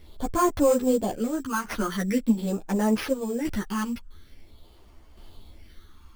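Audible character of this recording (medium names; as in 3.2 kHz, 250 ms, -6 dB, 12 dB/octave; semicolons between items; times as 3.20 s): phasing stages 8, 0.45 Hz, lowest notch 580–3100 Hz; tremolo saw down 0.58 Hz, depth 50%; aliases and images of a low sample rate 7.7 kHz, jitter 0%; a shimmering, thickened sound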